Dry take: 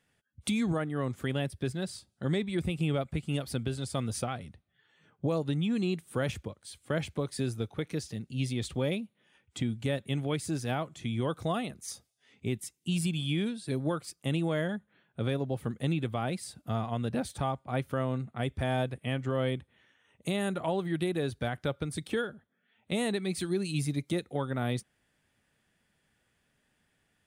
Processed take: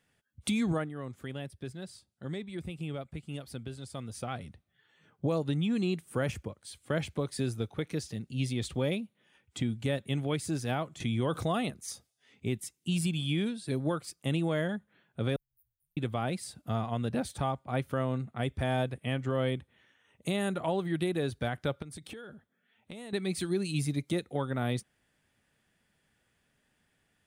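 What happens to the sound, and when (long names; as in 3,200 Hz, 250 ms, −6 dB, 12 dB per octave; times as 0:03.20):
0:00.78–0:04.35: duck −8 dB, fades 0.16 s
0:06.05–0:06.58: parametric band 3,700 Hz −7 dB 0.38 octaves
0:11.00–0:11.70: envelope flattener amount 50%
0:15.36–0:15.97: inverse Chebyshev band-stop filter 180–4,000 Hz, stop band 80 dB
0:21.82–0:23.13: downward compressor 20 to 1, threshold −40 dBFS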